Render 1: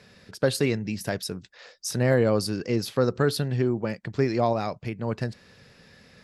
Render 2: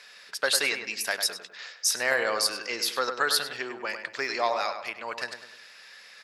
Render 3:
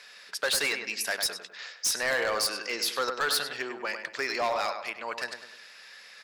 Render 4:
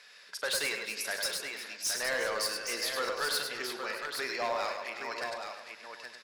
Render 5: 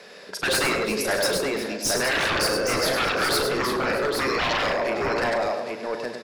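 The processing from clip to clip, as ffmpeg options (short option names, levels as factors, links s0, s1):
-filter_complex "[0:a]highpass=1200,asplit=2[s0][s1];[s1]adelay=101,lowpass=f=2400:p=1,volume=0.447,asplit=2[s2][s3];[s3]adelay=101,lowpass=f=2400:p=1,volume=0.45,asplit=2[s4][s5];[s5]adelay=101,lowpass=f=2400:p=1,volume=0.45,asplit=2[s6][s7];[s7]adelay=101,lowpass=f=2400:p=1,volume=0.45,asplit=2[s8][s9];[s9]adelay=101,lowpass=f=2400:p=1,volume=0.45[s10];[s2][s4][s6][s8][s10]amix=inputs=5:normalize=0[s11];[s0][s11]amix=inputs=2:normalize=0,volume=2.37"
-af "equalizer=f=110:w=5.5:g=-7,asoftclip=type=hard:threshold=0.0794"
-af "aecho=1:1:42|103|341|359|619|818:0.266|0.398|0.119|0.188|0.126|0.473,volume=0.531"
-filter_complex "[0:a]acrossover=split=620|1400[s0][s1][s2];[s0]aeval=exprs='0.0355*sin(PI/2*7.08*val(0)/0.0355)':c=same[s3];[s3][s1][s2]amix=inputs=3:normalize=0,asplit=2[s4][s5];[s5]adelay=37,volume=0.237[s6];[s4][s6]amix=inputs=2:normalize=0,volume=2.11"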